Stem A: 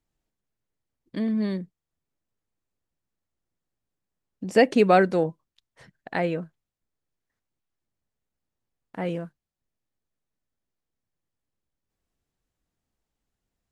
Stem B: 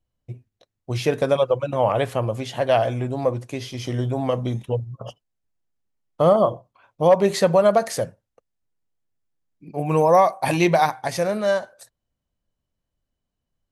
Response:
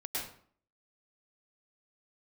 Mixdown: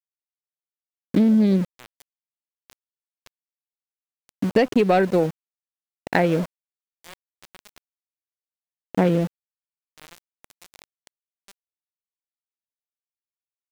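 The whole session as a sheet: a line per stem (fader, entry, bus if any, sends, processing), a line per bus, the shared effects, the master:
+0.5 dB, 0.00 s, no send, Wiener smoothing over 41 samples; sample leveller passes 1; AGC gain up to 14.5 dB
-14.5 dB, 0.00 s, no send, HPF 610 Hz 12 dB/oct; limiter -13.5 dBFS, peak gain reduction 5.5 dB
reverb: off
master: bell 1200 Hz -5.5 dB 0.33 oct; sample gate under -29 dBFS; compressor, threshold -15 dBFS, peak gain reduction 9.5 dB

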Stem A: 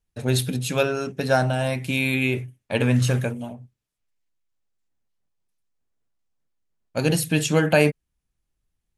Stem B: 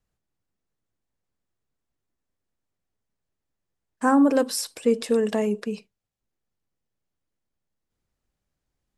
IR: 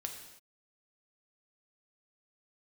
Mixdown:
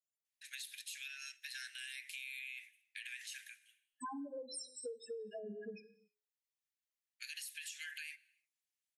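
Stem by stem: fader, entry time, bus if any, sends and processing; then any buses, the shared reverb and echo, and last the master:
-7.5 dB, 0.25 s, send -14.5 dB, steep high-pass 1700 Hz 72 dB/oct; compressor 4:1, threshold -31 dBFS, peak gain reduction 9.5 dB; limiter -27 dBFS, peak gain reduction 10 dB; auto duck -20 dB, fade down 0.80 s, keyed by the second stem
-4.5 dB, 0.00 s, send -7 dB, tilt +4 dB/oct; notches 60/120/180/240/300/360/420/480 Hz; loudest bins only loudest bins 2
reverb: on, pre-delay 3 ms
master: compressor 20:1, threshold -42 dBFS, peak gain reduction 18.5 dB

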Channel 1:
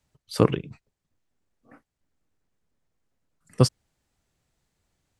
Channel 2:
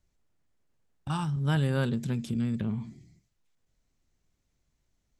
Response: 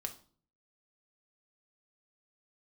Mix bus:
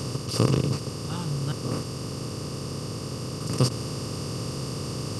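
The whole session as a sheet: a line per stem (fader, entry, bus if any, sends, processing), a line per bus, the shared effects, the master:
-3.5 dB, 0.00 s, no send, per-bin compression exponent 0.2
0.0 dB, 0.00 s, muted 1.52–3, no send, dry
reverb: off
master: bell 560 Hz -6.5 dB 2.7 oct

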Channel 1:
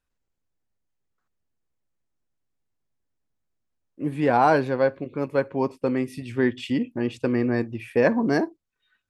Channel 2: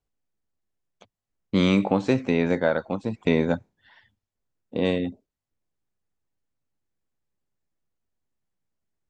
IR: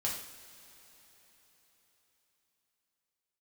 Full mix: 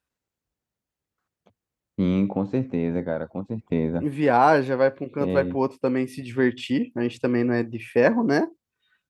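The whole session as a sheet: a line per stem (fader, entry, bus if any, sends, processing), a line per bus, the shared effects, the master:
+1.5 dB, 0.00 s, no send, dry
-8.0 dB, 0.45 s, no send, tilt -3.5 dB/oct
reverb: off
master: HPF 65 Hz; low shelf 150 Hz -3 dB

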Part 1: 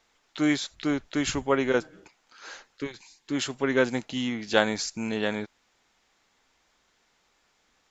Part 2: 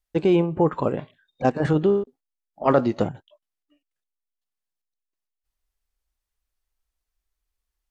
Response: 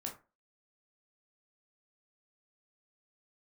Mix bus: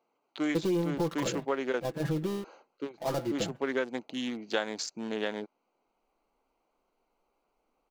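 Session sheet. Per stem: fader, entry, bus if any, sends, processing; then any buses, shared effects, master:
-0.5 dB, 0.00 s, no send, Wiener smoothing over 25 samples; HPF 280 Hz 12 dB/oct
-5.0 dB, 0.40 s, no send, switching dead time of 0.14 ms; sample leveller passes 2; comb 6 ms, depth 78%; auto duck -12 dB, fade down 1.45 s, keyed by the first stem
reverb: off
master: compressor 4:1, threshold -27 dBFS, peak gain reduction 9.5 dB

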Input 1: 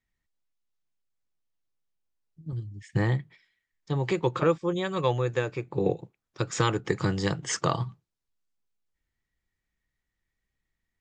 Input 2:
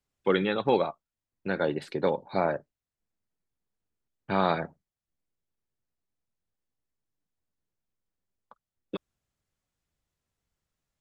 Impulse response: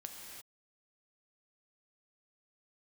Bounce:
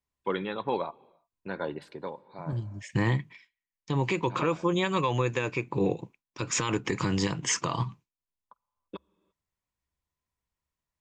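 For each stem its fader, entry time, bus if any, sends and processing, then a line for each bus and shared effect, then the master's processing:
+0.5 dB, 0.00 s, no send, gate with hold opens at -46 dBFS; fifteen-band EQ 250 Hz +8 dB, 2500 Hz +11 dB, 6300 Hz +7 dB
-7.0 dB, 0.00 s, send -20 dB, bell 70 Hz +10.5 dB 0.2 oct; auto duck -13 dB, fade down 0.60 s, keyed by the first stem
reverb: on, pre-delay 3 ms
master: bell 1000 Hz +12.5 dB 0.21 oct; limiter -16.5 dBFS, peak gain reduction 12.5 dB

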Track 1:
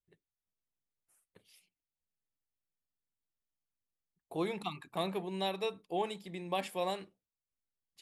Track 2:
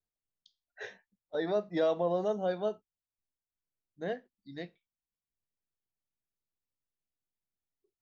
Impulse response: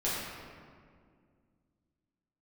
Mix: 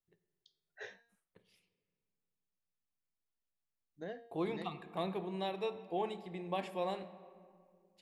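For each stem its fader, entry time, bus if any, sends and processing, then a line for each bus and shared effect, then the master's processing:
-6.0 dB, 0.00 s, send -18 dB, LPF 2500 Hz 6 dB/oct; AGC gain up to 3 dB
-3.5 dB, 0.00 s, muted 1.21–3.94, no send, de-hum 233.2 Hz, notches 27; compressor 4:1, threshold -37 dBFS, peak gain reduction 11 dB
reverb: on, RT60 2.1 s, pre-delay 6 ms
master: dry

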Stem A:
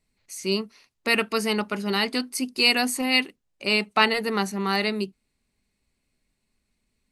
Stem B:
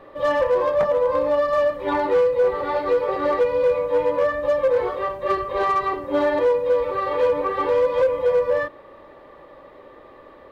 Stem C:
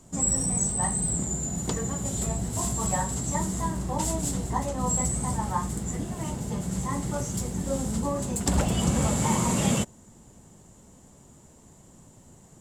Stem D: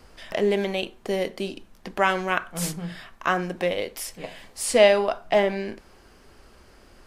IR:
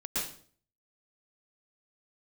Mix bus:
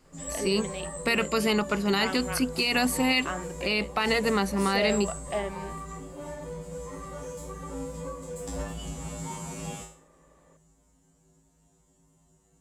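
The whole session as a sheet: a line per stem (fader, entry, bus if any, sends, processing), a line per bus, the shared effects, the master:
+1.5 dB, 0.00 s, no send, bell 7300 Hz -8 dB 0.7 oct
-16.0 dB, 0.05 s, no send, compressor 2:1, threshold -26 dBFS, peak gain reduction 6.5 dB
-0.5 dB, 0.00 s, no send, resonator 54 Hz, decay 0.45 s, harmonics odd, mix 100%
-11.0 dB, 0.00 s, no send, dry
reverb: off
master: limiter -14.5 dBFS, peak gain reduction 11.5 dB

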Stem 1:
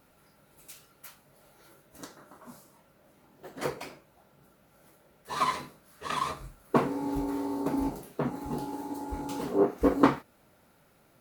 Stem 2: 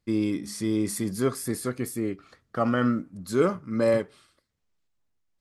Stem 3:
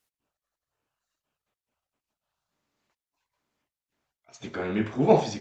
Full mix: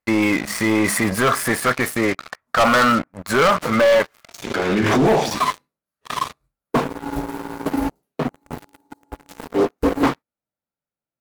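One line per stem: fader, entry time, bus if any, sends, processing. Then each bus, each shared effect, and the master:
-3.5 dB, 0.00 s, no send, notch 370 Hz, Q 12; upward expander 1.5:1, over -51 dBFS
-7.0 dB, 0.00 s, no send, band shelf 1200 Hz +16 dB 2.5 oct
-7.0 dB, 0.00 s, no send, low shelf 210 Hz -7 dB; backwards sustainer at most 45 dB/s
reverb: off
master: sample leveller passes 5; limiter -11 dBFS, peak gain reduction 5.5 dB

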